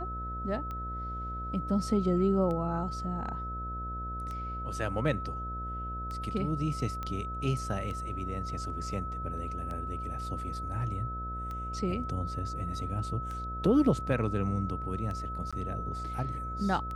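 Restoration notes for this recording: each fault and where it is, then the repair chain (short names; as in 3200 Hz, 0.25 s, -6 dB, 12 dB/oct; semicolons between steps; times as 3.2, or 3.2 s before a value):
buzz 60 Hz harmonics 12 -39 dBFS
tick 33 1/3 rpm -27 dBFS
tone 1300 Hz -37 dBFS
7.03 pop -23 dBFS
15.51–15.53 gap 16 ms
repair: de-click; de-hum 60 Hz, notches 12; notch 1300 Hz, Q 30; interpolate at 15.51, 16 ms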